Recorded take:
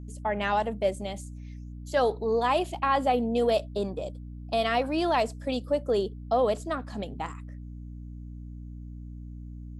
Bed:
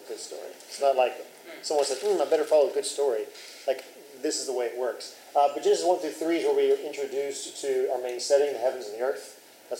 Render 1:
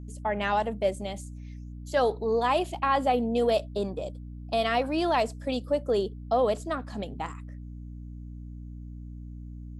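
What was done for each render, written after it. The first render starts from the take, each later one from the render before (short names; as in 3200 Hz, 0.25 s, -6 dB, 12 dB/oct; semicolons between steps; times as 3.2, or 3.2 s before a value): nothing audible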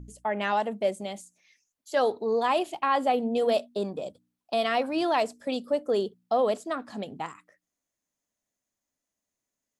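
de-hum 60 Hz, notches 5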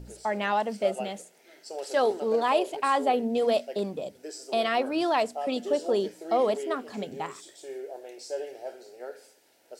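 add bed -12 dB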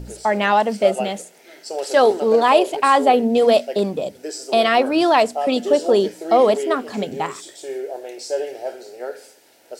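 gain +10 dB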